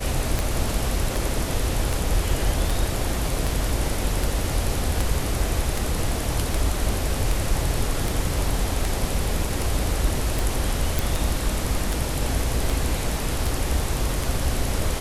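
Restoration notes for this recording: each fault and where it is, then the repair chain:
scratch tick 78 rpm
0:10.99: click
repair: click removal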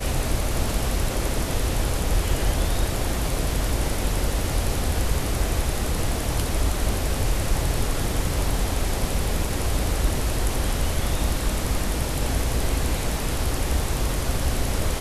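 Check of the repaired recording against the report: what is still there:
none of them is left

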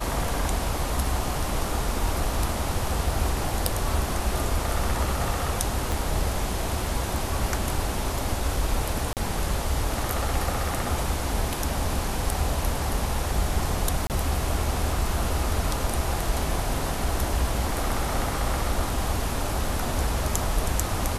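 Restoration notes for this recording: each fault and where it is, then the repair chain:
0:05.92: click
0:09.13–0:09.17: drop-out 38 ms
0:14.07–0:14.10: drop-out 28 ms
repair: click removal
repair the gap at 0:09.13, 38 ms
repair the gap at 0:14.07, 28 ms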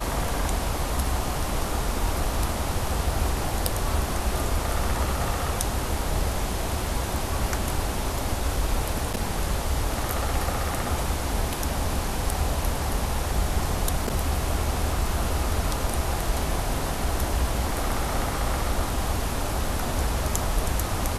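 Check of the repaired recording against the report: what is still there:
0:05.92: click

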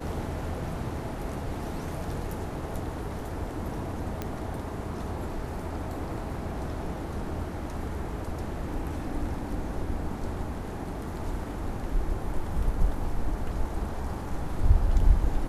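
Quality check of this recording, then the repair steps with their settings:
0:04.22: click −17 dBFS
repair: click removal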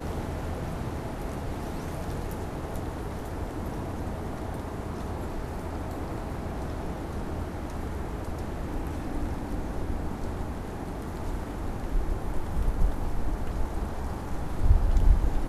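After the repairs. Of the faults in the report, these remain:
0:04.22: click

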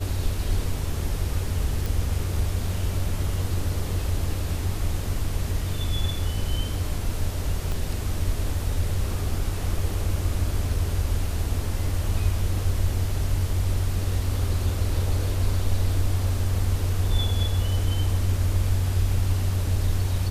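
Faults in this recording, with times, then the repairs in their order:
0:01.86: click
0:07.72: click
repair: click removal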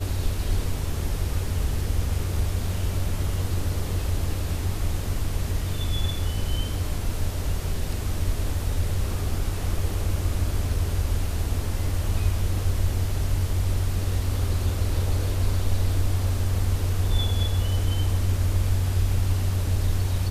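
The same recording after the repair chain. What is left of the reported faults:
0:07.72: click

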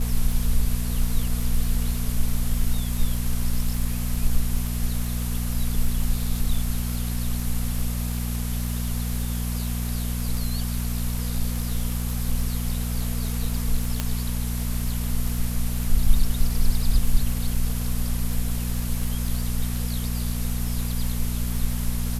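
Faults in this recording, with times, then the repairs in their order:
surface crackle 37 per second −28 dBFS
mains hum 60 Hz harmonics 4 −27 dBFS
0:14.00: click −9 dBFS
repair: click removal
hum removal 60 Hz, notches 4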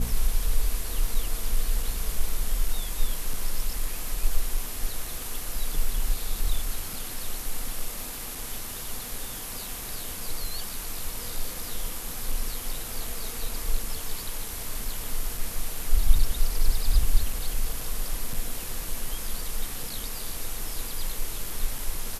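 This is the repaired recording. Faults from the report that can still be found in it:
none of them is left

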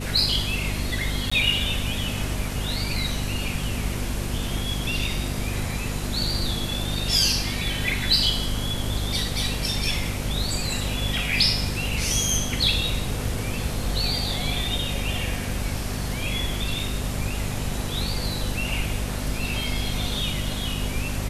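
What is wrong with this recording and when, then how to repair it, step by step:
mains hum 50 Hz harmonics 5 −30 dBFS
0:01.30–0:01.31: drop-out 15 ms
0:19.64: drop-out 2.6 ms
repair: hum removal 50 Hz, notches 5
repair the gap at 0:01.30, 15 ms
repair the gap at 0:19.64, 2.6 ms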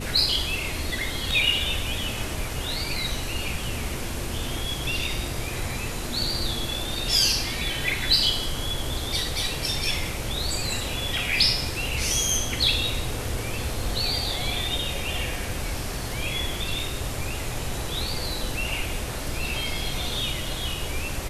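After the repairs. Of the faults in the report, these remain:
none of them is left

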